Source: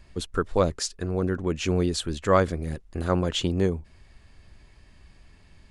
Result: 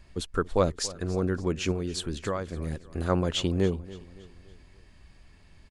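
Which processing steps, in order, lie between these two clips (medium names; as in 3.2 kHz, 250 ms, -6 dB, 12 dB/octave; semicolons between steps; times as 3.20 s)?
1.71–2.57 s: compression 12:1, threshold -25 dBFS, peak gain reduction 12 dB; feedback delay 283 ms, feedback 46%, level -18.5 dB; trim -1.5 dB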